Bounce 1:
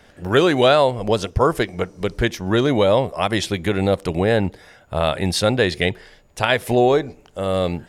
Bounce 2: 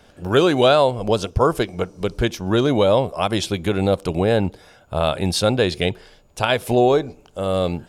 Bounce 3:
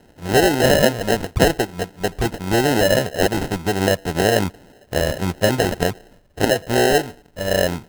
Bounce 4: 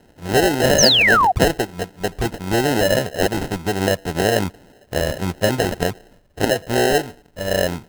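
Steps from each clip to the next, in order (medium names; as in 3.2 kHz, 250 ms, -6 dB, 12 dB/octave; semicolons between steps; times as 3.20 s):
peaking EQ 1.9 kHz -10 dB 0.31 oct
LFO low-pass square 1.8 Hz 870–5000 Hz; sample-and-hold 38×; trim -1 dB
painted sound fall, 0.78–1.32 s, 690–6700 Hz -13 dBFS; trim -1 dB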